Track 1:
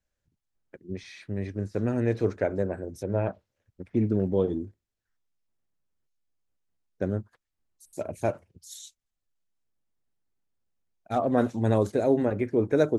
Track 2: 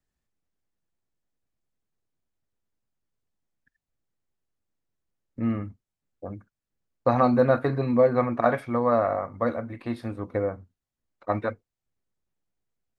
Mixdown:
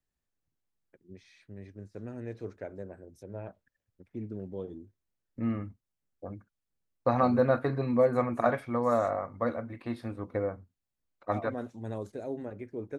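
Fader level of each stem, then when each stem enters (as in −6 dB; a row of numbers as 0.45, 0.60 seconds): −14.0, −4.5 decibels; 0.20, 0.00 seconds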